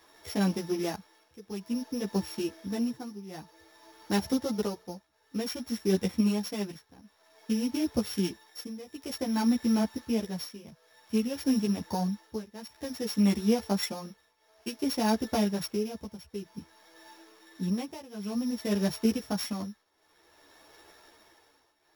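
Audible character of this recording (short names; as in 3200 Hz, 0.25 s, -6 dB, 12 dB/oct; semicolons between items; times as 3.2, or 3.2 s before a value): a buzz of ramps at a fixed pitch in blocks of 8 samples; tremolo triangle 0.54 Hz, depth 90%; a shimmering, thickened sound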